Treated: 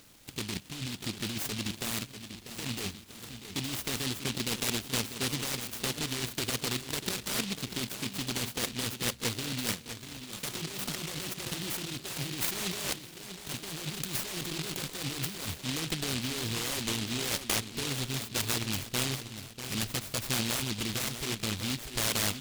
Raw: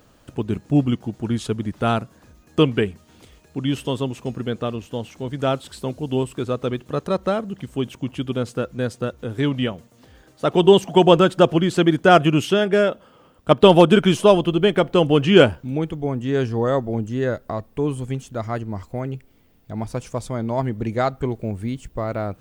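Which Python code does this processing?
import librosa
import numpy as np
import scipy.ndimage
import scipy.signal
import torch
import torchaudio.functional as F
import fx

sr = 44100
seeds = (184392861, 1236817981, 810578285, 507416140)

y = 10.0 ** (-10.0 / 20.0) * np.tanh(x / 10.0 ** (-10.0 / 20.0))
y = fx.over_compress(y, sr, threshold_db=-26.0, ratio=-1.0)
y = fx.low_shelf(y, sr, hz=250.0, db=-9.5)
y = fx.echo_wet_lowpass(y, sr, ms=643, feedback_pct=55, hz=1100.0, wet_db=-10.0)
y = fx.noise_mod_delay(y, sr, seeds[0], noise_hz=3300.0, depth_ms=0.48)
y = F.gain(torch.from_numpy(y), -4.0).numpy()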